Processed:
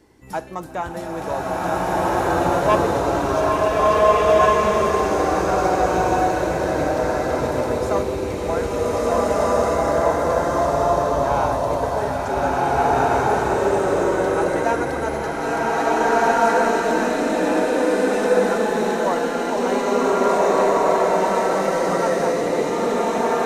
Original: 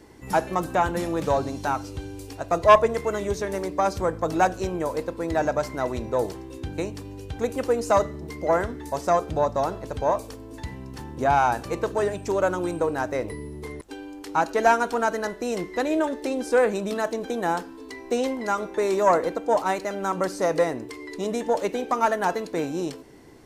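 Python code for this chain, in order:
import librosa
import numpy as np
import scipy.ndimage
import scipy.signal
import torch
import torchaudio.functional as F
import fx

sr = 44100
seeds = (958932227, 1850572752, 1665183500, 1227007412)

y = fx.rev_bloom(x, sr, seeds[0], attack_ms=1780, drr_db=-10.5)
y = y * 10.0 ** (-5.0 / 20.0)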